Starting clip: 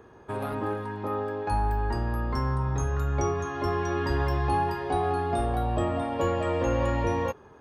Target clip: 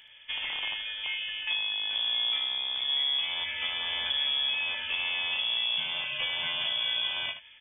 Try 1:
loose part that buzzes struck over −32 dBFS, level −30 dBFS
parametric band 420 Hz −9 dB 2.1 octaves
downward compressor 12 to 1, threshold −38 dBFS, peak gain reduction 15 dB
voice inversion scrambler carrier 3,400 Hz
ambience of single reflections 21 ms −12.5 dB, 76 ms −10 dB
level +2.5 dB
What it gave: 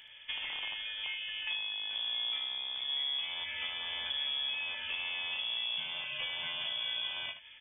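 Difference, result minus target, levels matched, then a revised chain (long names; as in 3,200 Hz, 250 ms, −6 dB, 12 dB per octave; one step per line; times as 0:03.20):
downward compressor: peak gain reduction +6.5 dB
loose part that buzzes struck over −32 dBFS, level −30 dBFS
parametric band 420 Hz −9 dB 2.1 octaves
downward compressor 12 to 1, threshold −31 dBFS, peak gain reduction 8.5 dB
voice inversion scrambler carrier 3,400 Hz
ambience of single reflections 21 ms −12.5 dB, 76 ms −10 dB
level +2.5 dB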